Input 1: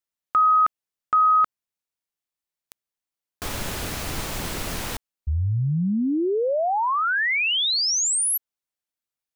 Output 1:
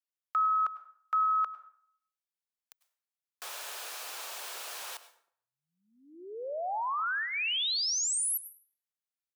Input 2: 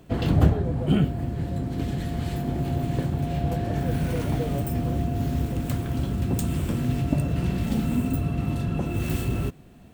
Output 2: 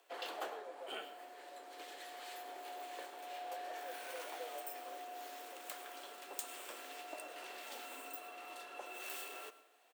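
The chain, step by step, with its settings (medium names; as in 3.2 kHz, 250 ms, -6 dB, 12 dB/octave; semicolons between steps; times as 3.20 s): Bessel high-pass 740 Hz, order 6; dynamic bell 2 kHz, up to -7 dB, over -49 dBFS, Q 6.7; frequency shift +22 Hz; delay 104 ms -22 dB; plate-style reverb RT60 0.59 s, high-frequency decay 0.7×, pre-delay 85 ms, DRR 14.5 dB; trim -8 dB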